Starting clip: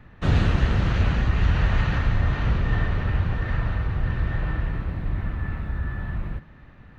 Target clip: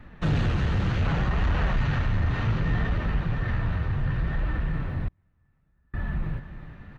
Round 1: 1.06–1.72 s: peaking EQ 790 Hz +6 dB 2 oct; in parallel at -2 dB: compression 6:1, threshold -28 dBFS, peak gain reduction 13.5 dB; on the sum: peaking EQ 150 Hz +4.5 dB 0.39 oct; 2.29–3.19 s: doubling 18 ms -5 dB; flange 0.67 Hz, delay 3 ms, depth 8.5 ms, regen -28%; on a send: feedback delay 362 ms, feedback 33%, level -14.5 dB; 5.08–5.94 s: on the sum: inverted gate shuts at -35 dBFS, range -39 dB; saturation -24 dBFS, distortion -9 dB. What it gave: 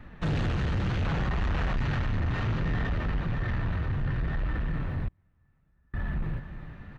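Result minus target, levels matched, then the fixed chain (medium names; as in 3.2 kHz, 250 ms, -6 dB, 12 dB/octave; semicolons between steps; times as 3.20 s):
saturation: distortion +7 dB
1.06–1.72 s: peaking EQ 790 Hz +6 dB 2 oct; in parallel at -2 dB: compression 6:1, threshold -28 dBFS, peak gain reduction 13.5 dB; on the sum: peaking EQ 150 Hz +4.5 dB 0.39 oct; 2.29–3.19 s: doubling 18 ms -5 dB; flange 0.67 Hz, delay 3 ms, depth 8.5 ms, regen -28%; on a send: feedback delay 362 ms, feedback 33%, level -14.5 dB; 5.08–5.94 s: on the sum: inverted gate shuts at -35 dBFS, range -39 dB; saturation -17 dBFS, distortion -16 dB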